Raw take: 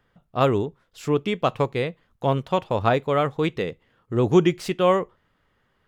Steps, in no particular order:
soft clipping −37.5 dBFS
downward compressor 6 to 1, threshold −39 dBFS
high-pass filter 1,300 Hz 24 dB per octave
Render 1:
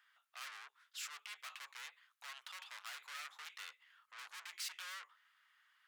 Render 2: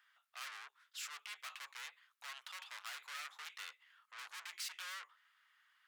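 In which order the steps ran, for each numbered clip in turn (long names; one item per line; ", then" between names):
soft clipping, then downward compressor, then high-pass filter
soft clipping, then high-pass filter, then downward compressor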